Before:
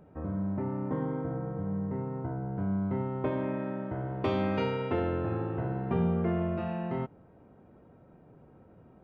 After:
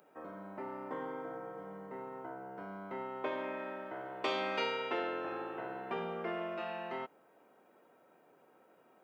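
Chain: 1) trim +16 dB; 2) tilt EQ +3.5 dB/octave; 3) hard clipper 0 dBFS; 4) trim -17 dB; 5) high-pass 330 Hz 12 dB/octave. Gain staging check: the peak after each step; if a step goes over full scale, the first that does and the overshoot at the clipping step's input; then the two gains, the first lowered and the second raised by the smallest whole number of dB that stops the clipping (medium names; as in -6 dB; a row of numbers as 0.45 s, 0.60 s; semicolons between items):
-1.0 dBFS, -4.5 dBFS, -4.5 dBFS, -21.5 dBFS, -21.0 dBFS; nothing clips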